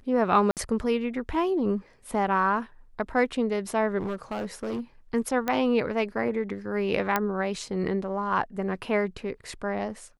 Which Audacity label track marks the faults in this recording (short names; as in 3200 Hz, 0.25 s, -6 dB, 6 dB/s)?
0.510000	0.570000	gap 58 ms
3.980000	4.800000	clipped -27 dBFS
5.480000	5.480000	pop -13 dBFS
7.160000	7.160000	pop -9 dBFS